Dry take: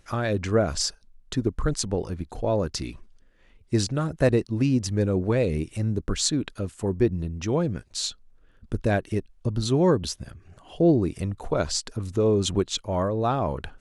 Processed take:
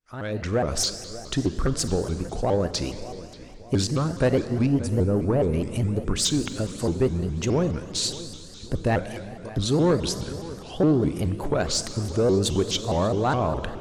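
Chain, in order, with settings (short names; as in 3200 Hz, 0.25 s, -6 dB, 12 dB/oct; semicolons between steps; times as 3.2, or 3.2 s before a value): opening faded in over 0.84 s; 4.66–5.53 band shelf 3400 Hz -12.5 dB 2.3 oct; in parallel at -1 dB: compressor, threshold -32 dBFS, peak gain reduction 16 dB; on the sum: soft clip -13 dBFS, distortion -19 dB; 8.99–9.57 Bessel high-pass 950 Hz; on a send: darkening echo 0.585 s, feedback 44%, low-pass 3600 Hz, level -17 dB; on the sum: Schroeder reverb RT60 2.4 s, combs from 30 ms, DRR 10 dB; shaped vibrato saw up 4.8 Hz, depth 250 cents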